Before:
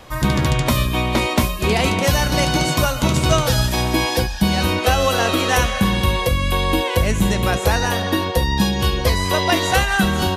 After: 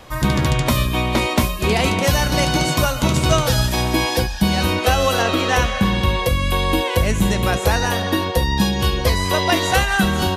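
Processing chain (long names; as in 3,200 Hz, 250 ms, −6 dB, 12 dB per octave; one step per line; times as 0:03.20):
0:05.22–0:06.26: parametric band 11,000 Hz −9 dB 1.1 octaves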